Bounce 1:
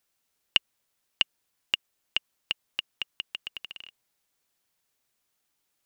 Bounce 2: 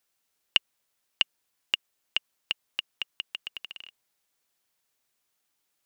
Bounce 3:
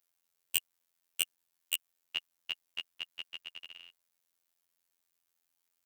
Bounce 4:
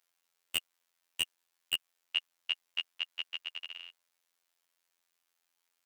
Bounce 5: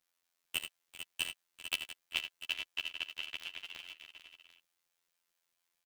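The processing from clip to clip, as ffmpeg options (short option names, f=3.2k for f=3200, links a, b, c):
-af "lowshelf=f=250:g=-4.5"
-af "aeval=exprs='(mod(2.66*val(0)+1,2)-1)/2.66':c=same,crystalizer=i=0.5:c=0,afftfilt=real='hypot(re,im)*cos(PI*b)':imag='0':win_size=2048:overlap=0.75,volume=-4dB"
-filter_complex "[0:a]asplit=2[a][b];[b]highpass=f=720:p=1,volume=19dB,asoftclip=type=tanh:threshold=-1dB[c];[a][c]amix=inputs=2:normalize=0,lowpass=f=4.1k:p=1,volume=-6dB,volume=-6.5dB"
-filter_complex "[0:a]asplit=2[a][b];[b]aecho=0:1:42|80|97|393|447|695:0.119|0.355|0.112|0.119|0.335|0.237[c];[a][c]amix=inputs=2:normalize=0,aeval=exprs='val(0)*sgn(sin(2*PI*170*n/s))':c=same,volume=-3.5dB"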